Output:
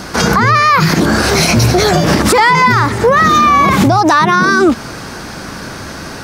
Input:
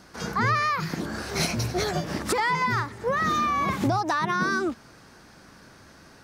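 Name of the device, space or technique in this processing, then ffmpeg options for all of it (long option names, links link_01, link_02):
mastering chain: -af "equalizer=frequency=1800:width_type=o:width=0.21:gain=-2,acompressor=threshold=-27dB:ratio=2,asoftclip=type=hard:threshold=-18dB,alimiter=level_in=25.5dB:limit=-1dB:release=50:level=0:latency=1,volume=-1dB"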